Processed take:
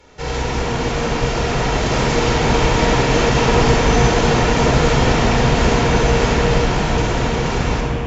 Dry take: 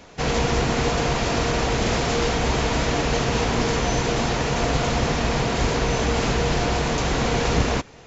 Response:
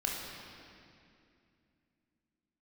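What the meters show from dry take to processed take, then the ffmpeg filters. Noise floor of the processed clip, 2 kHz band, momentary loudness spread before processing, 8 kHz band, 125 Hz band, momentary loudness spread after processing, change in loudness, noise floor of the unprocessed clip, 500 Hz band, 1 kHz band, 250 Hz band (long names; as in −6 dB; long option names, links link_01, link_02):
−22 dBFS, +5.5 dB, 1 LU, can't be measured, +6.5 dB, 6 LU, +5.5 dB, −45 dBFS, +6.0 dB, +6.0 dB, +6.0 dB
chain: -filter_complex "[0:a]dynaudnorm=framelen=220:gausssize=17:maxgain=6.5dB[link_01];[1:a]atrim=start_sample=2205,asetrate=27342,aresample=44100[link_02];[link_01][link_02]afir=irnorm=-1:irlink=0,volume=-7dB"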